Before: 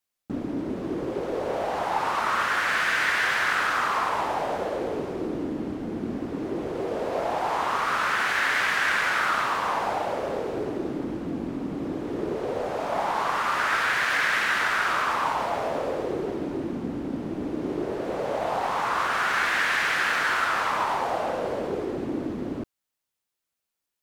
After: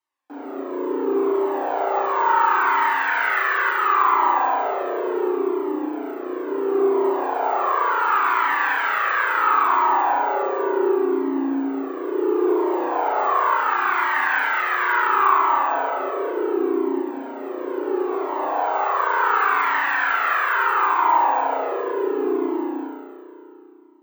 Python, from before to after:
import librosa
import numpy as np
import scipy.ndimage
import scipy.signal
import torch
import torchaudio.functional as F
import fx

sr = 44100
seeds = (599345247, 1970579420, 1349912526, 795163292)

p1 = fx.high_shelf(x, sr, hz=3500.0, db=-9.0)
p2 = fx.rider(p1, sr, range_db=10, speed_s=0.5)
p3 = p1 + (p2 * 10.0 ** (1.0 / 20.0))
p4 = scipy.signal.sosfilt(scipy.signal.cheby1(6, 9, 270.0, 'highpass', fs=sr, output='sos'), p3)
p5 = p4 + fx.echo_single(p4, sr, ms=234, db=-4.5, dry=0)
p6 = fx.rev_spring(p5, sr, rt60_s=2.4, pass_ms=(33,), chirp_ms=55, drr_db=-5.5)
p7 = np.repeat(p6[::2], 2)[:len(p6)]
y = fx.comb_cascade(p7, sr, direction='falling', hz=0.71)